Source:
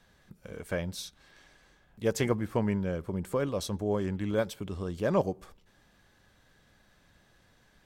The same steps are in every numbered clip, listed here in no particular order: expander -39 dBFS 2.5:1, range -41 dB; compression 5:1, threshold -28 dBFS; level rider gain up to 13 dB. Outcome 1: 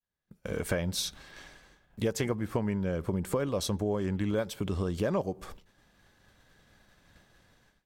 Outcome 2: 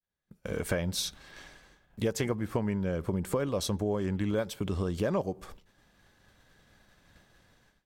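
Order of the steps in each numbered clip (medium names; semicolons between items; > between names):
level rider > expander > compression; level rider > compression > expander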